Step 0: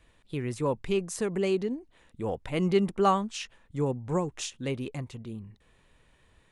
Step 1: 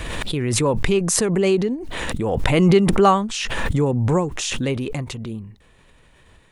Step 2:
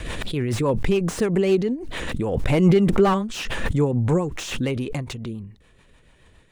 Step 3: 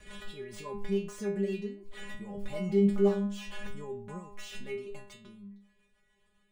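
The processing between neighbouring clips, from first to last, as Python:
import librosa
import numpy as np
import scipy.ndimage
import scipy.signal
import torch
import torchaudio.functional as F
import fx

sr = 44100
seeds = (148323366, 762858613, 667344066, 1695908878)

y1 = fx.pre_swell(x, sr, db_per_s=22.0)
y1 = y1 * librosa.db_to_amplitude(8.0)
y2 = fx.rotary(y1, sr, hz=7.0)
y2 = fx.slew_limit(y2, sr, full_power_hz=140.0)
y3 = fx.stiff_resonator(y2, sr, f0_hz=200.0, decay_s=0.51, stiffness=0.002)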